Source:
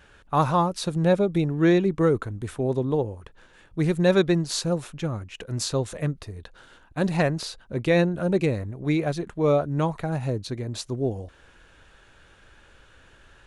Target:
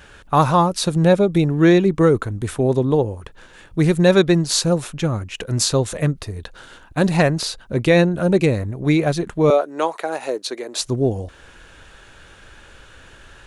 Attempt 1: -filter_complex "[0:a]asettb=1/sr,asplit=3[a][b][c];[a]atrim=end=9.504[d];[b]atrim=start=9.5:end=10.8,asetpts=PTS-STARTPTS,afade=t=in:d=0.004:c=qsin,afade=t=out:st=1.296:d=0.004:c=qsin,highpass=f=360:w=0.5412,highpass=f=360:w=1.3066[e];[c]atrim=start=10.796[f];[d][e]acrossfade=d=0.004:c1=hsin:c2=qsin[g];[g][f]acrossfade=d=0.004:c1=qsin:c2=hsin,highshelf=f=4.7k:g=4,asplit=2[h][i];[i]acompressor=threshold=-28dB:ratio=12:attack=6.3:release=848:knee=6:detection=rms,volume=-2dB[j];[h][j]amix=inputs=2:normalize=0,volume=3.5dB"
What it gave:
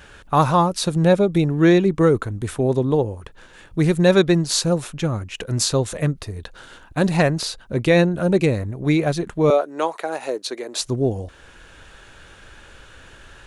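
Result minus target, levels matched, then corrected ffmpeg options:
compressor: peak gain reduction +6.5 dB
-filter_complex "[0:a]asettb=1/sr,asplit=3[a][b][c];[a]atrim=end=9.504[d];[b]atrim=start=9.5:end=10.8,asetpts=PTS-STARTPTS,afade=t=in:d=0.004:c=qsin,afade=t=out:st=1.296:d=0.004:c=qsin,highpass=f=360:w=0.5412,highpass=f=360:w=1.3066[e];[c]atrim=start=10.796[f];[d][e]acrossfade=d=0.004:c1=hsin:c2=qsin[g];[g][f]acrossfade=d=0.004:c1=qsin:c2=hsin,highshelf=f=4.7k:g=4,asplit=2[h][i];[i]acompressor=threshold=-21dB:ratio=12:attack=6.3:release=848:knee=6:detection=rms,volume=-2dB[j];[h][j]amix=inputs=2:normalize=0,volume=3.5dB"

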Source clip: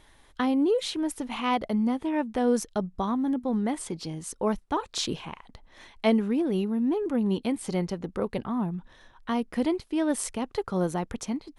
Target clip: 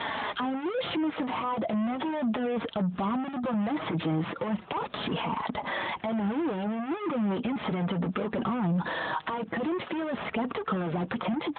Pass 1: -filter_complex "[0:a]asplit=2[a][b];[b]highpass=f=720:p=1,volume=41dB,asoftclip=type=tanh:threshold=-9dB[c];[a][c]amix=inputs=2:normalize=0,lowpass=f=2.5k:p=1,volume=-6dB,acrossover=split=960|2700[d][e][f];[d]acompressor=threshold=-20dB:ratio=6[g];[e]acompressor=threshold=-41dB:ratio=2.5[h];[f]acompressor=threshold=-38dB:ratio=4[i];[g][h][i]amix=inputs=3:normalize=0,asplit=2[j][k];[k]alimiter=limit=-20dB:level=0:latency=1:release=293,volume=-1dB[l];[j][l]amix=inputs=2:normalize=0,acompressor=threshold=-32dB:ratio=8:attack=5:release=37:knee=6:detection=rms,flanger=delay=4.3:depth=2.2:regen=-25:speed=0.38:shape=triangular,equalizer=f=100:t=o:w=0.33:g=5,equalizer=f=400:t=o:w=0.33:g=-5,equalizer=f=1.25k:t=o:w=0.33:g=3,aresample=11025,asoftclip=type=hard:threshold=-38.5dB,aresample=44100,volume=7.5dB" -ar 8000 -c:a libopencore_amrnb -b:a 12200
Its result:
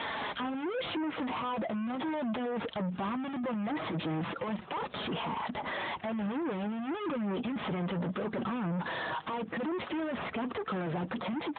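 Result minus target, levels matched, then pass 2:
hard clip: distortion +25 dB
-filter_complex "[0:a]asplit=2[a][b];[b]highpass=f=720:p=1,volume=41dB,asoftclip=type=tanh:threshold=-9dB[c];[a][c]amix=inputs=2:normalize=0,lowpass=f=2.5k:p=1,volume=-6dB,acrossover=split=960|2700[d][e][f];[d]acompressor=threshold=-20dB:ratio=6[g];[e]acompressor=threshold=-41dB:ratio=2.5[h];[f]acompressor=threshold=-38dB:ratio=4[i];[g][h][i]amix=inputs=3:normalize=0,asplit=2[j][k];[k]alimiter=limit=-20dB:level=0:latency=1:release=293,volume=-1dB[l];[j][l]amix=inputs=2:normalize=0,acompressor=threshold=-32dB:ratio=8:attack=5:release=37:knee=6:detection=rms,flanger=delay=4.3:depth=2.2:regen=-25:speed=0.38:shape=triangular,equalizer=f=100:t=o:w=0.33:g=5,equalizer=f=400:t=o:w=0.33:g=-5,equalizer=f=1.25k:t=o:w=0.33:g=3,aresample=11025,asoftclip=type=hard:threshold=-28dB,aresample=44100,volume=7.5dB" -ar 8000 -c:a libopencore_amrnb -b:a 12200

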